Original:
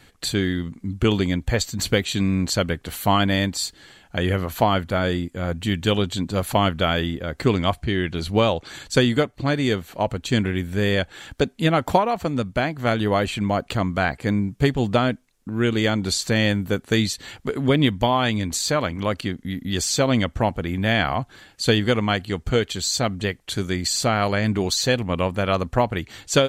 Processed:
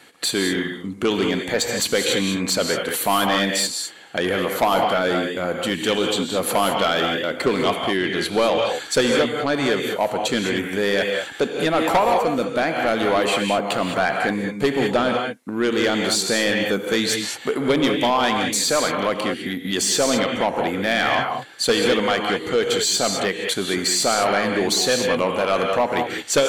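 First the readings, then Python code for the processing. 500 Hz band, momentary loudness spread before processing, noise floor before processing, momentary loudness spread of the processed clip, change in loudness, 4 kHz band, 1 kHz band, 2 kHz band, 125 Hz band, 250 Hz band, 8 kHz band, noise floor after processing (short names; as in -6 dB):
+3.5 dB, 6 LU, -55 dBFS, 5 LU, +2.0 dB, +3.5 dB, +3.0 dB, +3.5 dB, -9.5 dB, -1.0 dB, +5.0 dB, -34 dBFS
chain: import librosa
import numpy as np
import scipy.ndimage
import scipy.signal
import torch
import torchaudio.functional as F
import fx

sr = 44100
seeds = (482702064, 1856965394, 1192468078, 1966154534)

p1 = fx.peak_eq(x, sr, hz=10000.0, db=6.5, octaves=0.54)
p2 = fx.level_steps(p1, sr, step_db=15)
p3 = p1 + (p2 * 10.0 ** (2.0 / 20.0))
p4 = scipy.signal.sosfilt(scipy.signal.butter(2, 300.0, 'highpass', fs=sr, output='sos'), p3)
p5 = fx.high_shelf(p4, sr, hz=4600.0, db=-4.5)
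p6 = fx.rev_gated(p5, sr, seeds[0], gate_ms=230, shape='rising', drr_db=4.0)
p7 = 10.0 ** (-13.5 / 20.0) * np.tanh(p6 / 10.0 ** (-13.5 / 20.0))
y = p7 * 10.0 ** (2.0 / 20.0)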